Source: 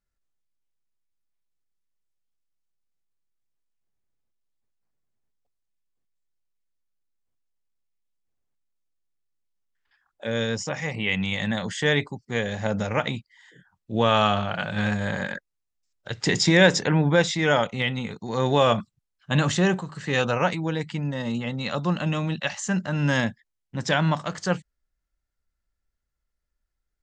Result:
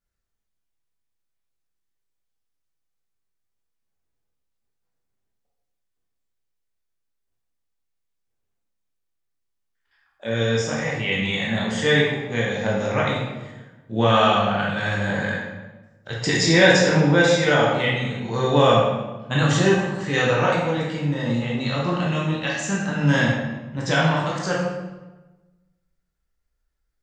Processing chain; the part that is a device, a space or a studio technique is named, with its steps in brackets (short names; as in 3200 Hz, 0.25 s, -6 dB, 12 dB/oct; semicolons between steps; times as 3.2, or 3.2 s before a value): bathroom (reverb RT60 1.2 s, pre-delay 14 ms, DRR -4.5 dB); gain -2 dB